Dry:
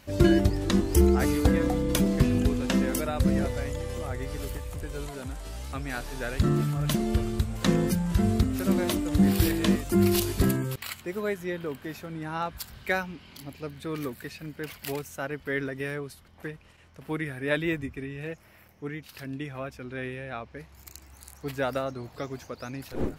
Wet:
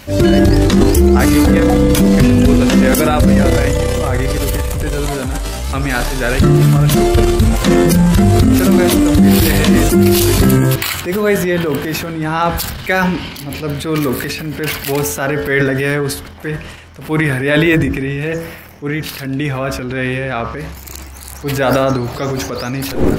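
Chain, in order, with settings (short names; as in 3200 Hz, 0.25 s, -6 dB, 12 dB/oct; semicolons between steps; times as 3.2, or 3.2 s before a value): de-hum 55.1 Hz, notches 33; transient shaper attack -5 dB, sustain +8 dB; maximiser +18.5 dB; gain -1 dB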